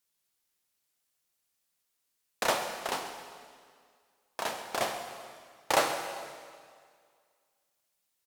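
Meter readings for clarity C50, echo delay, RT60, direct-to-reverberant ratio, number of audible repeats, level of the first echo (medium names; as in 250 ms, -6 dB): 6.0 dB, 133 ms, 2.0 s, 4.5 dB, 1, -15.5 dB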